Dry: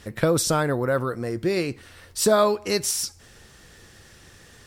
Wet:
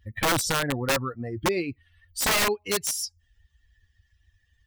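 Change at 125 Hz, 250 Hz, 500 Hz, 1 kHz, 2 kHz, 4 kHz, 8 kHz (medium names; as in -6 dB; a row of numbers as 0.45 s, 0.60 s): -4.5 dB, -5.0 dB, -7.5 dB, -2.0 dB, +3.5 dB, +1.5 dB, -1.5 dB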